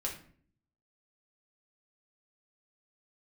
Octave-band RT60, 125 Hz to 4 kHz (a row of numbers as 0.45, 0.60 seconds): 0.90, 0.80, 0.55, 0.45, 0.45, 0.35 seconds